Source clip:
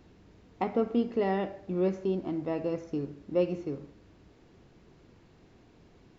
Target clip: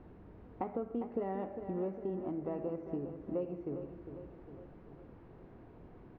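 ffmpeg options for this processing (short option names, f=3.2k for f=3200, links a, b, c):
-filter_complex "[0:a]lowpass=1.2k,equalizer=f=160:w=0.33:g=-3.5,acompressor=threshold=-44dB:ratio=3,asplit=2[a][b];[b]aecho=0:1:404|808|1212|1616|2020|2424:0.335|0.181|0.0977|0.0527|0.0285|0.0154[c];[a][c]amix=inputs=2:normalize=0,volume=5.5dB"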